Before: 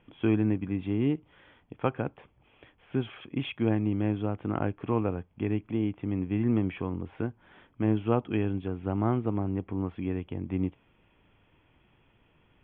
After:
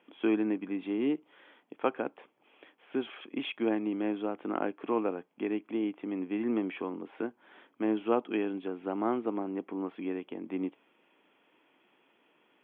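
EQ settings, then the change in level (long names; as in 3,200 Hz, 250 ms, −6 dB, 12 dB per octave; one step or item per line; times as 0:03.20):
high-pass filter 260 Hz 24 dB per octave
0.0 dB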